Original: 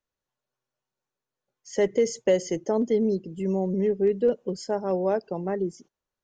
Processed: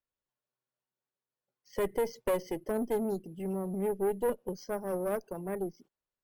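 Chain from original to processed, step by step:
bad sample-rate conversion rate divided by 4×, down filtered, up hold
tube saturation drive 20 dB, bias 0.7
level −3 dB

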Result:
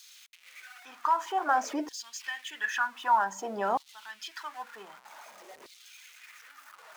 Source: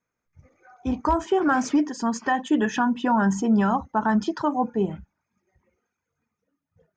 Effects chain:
converter with a step at zero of −37.5 dBFS
auto-filter high-pass saw down 0.53 Hz 450–4,100 Hz
level −7 dB

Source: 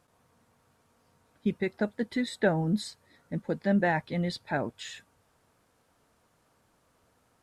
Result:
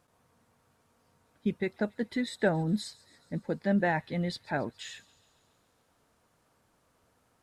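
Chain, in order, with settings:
delay with a high-pass on its return 139 ms, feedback 66%, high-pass 3,500 Hz, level −18 dB
level −1.5 dB

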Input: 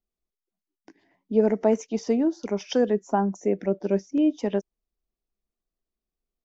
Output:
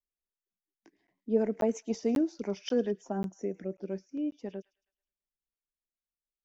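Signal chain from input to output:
source passing by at 0:02.12, 10 m/s, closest 8.8 metres
delay with a high-pass on its return 107 ms, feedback 48%, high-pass 2,200 Hz, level −17 dB
rotating-speaker cabinet horn 5.5 Hz
regular buffer underruns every 0.54 s, samples 512, zero, from 0:00.53
level −3 dB

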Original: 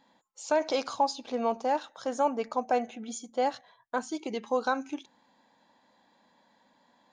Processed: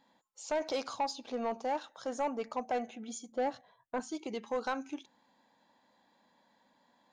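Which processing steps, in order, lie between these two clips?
0:03.32–0:04.00: tilt shelving filter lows +5.5 dB, about 830 Hz
soft clipping −21.5 dBFS, distortion −14 dB
level −4 dB

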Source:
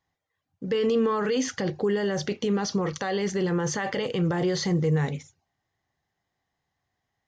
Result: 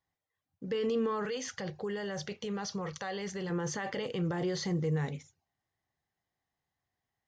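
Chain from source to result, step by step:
0:01.25–0:03.50: parametric band 290 Hz −14 dB 0.61 octaves
level −7.5 dB

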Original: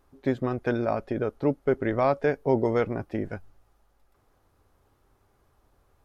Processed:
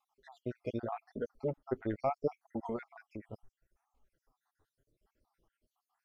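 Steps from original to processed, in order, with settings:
time-frequency cells dropped at random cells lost 66%
flanger 0.77 Hz, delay 3.4 ms, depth 6.7 ms, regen −2%
0:02.76–0:03.23: downward compressor 2 to 1, threshold −41 dBFS, peak gain reduction 8 dB
level −5.5 dB

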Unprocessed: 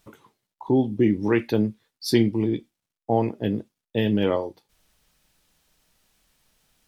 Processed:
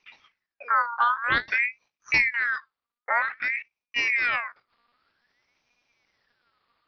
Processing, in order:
one-pitch LPC vocoder at 8 kHz 240 Hz
ring modulator whose carrier an LFO sweeps 1,800 Hz, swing 35%, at 0.52 Hz

